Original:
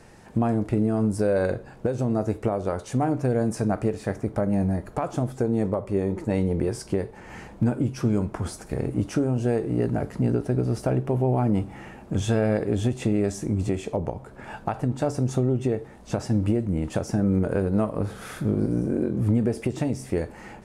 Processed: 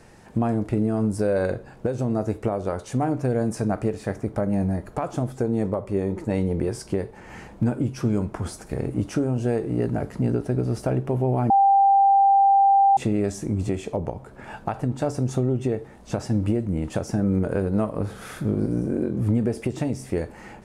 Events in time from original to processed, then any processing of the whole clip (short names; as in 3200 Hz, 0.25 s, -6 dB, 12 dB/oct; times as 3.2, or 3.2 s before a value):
11.5–12.97 bleep 790 Hz -13 dBFS